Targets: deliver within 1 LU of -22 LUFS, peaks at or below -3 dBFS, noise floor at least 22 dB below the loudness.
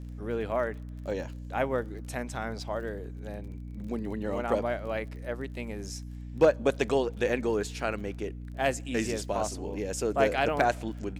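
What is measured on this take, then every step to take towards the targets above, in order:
tick rate 28 per s; hum 60 Hz; highest harmonic 300 Hz; hum level -38 dBFS; loudness -31.0 LUFS; peak level -11.0 dBFS; loudness target -22.0 LUFS
-> de-click; hum notches 60/120/180/240/300 Hz; trim +9 dB; peak limiter -3 dBFS

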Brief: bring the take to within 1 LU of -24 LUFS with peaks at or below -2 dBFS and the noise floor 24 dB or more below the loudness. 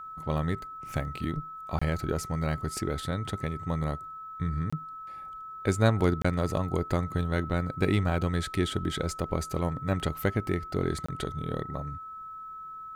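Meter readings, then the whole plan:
dropouts 4; longest dropout 25 ms; steady tone 1.3 kHz; tone level -39 dBFS; loudness -30.5 LUFS; peak level -9.5 dBFS; loudness target -24.0 LUFS
-> interpolate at 1.79/4.70/6.22/11.06 s, 25 ms; band-stop 1.3 kHz, Q 30; trim +6.5 dB

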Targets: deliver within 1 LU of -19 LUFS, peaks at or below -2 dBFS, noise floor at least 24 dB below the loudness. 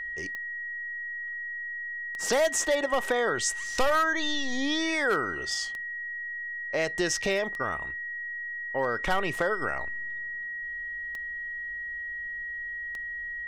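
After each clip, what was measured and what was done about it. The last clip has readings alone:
clicks found 8; steady tone 1.9 kHz; tone level -33 dBFS; loudness -29.5 LUFS; peak level -12.5 dBFS; loudness target -19.0 LUFS
-> de-click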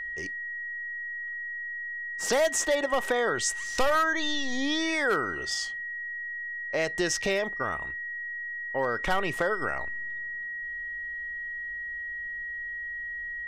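clicks found 0; steady tone 1.9 kHz; tone level -33 dBFS
-> band-stop 1.9 kHz, Q 30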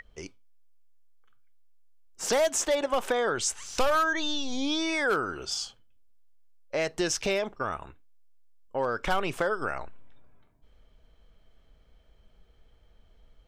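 steady tone not found; loudness -28.5 LUFS; peak level -12.5 dBFS; loudness target -19.0 LUFS
-> trim +9.5 dB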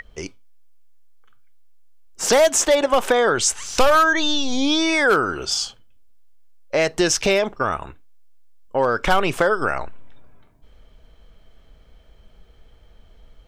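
loudness -19.0 LUFS; peak level -3.0 dBFS; noise floor -52 dBFS

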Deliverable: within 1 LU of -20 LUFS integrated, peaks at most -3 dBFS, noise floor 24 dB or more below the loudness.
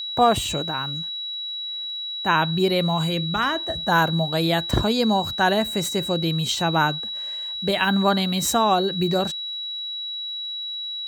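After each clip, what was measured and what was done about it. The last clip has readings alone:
tick rate 37 per s; steady tone 3.9 kHz; tone level -28 dBFS; loudness -22.5 LUFS; peak level -5.5 dBFS; loudness target -20.0 LUFS
-> de-click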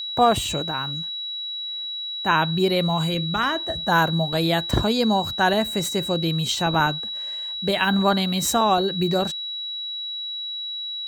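tick rate 0.81 per s; steady tone 3.9 kHz; tone level -28 dBFS
-> band-stop 3.9 kHz, Q 30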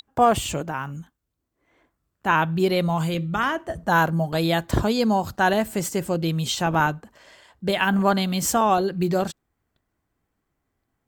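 steady tone not found; loudness -22.5 LUFS; peak level -6.0 dBFS; loudness target -20.0 LUFS
-> trim +2.5 dB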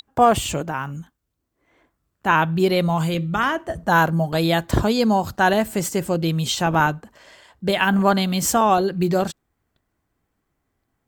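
loudness -20.0 LUFS; peak level -3.5 dBFS; noise floor -76 dBFS

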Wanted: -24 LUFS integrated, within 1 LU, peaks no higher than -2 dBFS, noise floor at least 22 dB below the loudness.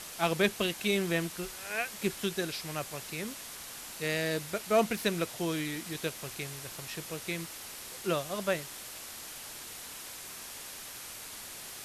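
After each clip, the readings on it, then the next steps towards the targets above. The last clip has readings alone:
noise floor -45 dBFS; noise floor target -56 dBFS; loudness -34.0 LUFS; peak level -16.0 dBFS; loudness target -24.0 LUFS
-> noise reduction 11 dB, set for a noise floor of -45 dBFS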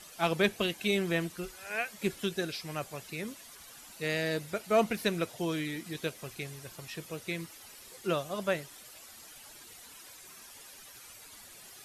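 noise floor -52 dBFS; noise floor target -56 dBFS
-> noise reduction 6 dB, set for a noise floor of -52 dBFS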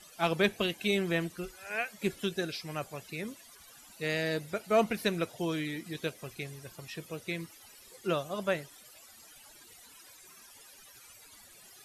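noise floor -55 dBFS; noise floor target -56 dBFS
-> noise reduction 6 dB, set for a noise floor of -55 dBFS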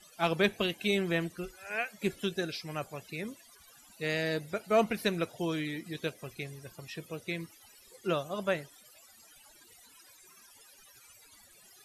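noise floor -59 dBFS; loudness -33.5 LUFS; peak level -15.5 dBFS; loudness target -24.0 LUFS
-> trim +9.5 dB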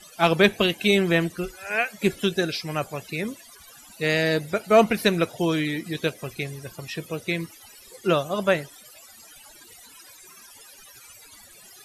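loudness -24.0 LUFS; peak level -6.0 dBFS; noise floor -49 dBFS

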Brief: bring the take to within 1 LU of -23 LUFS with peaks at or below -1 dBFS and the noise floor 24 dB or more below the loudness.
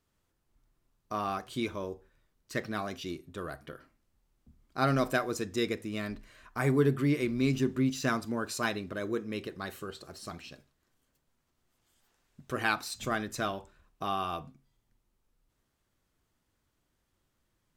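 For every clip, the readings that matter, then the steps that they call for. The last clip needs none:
loudness -32.5 LUFS; peak level -12.5 dBFS; loudness target -23.0 LUFS
-> trim +9.5 dB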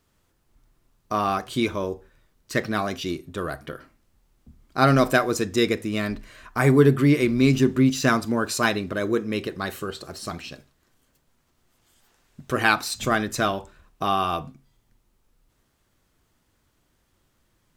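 loudness -23.5 LUFS; peak level -2.5 dBFS; noise floor -69 dBFS

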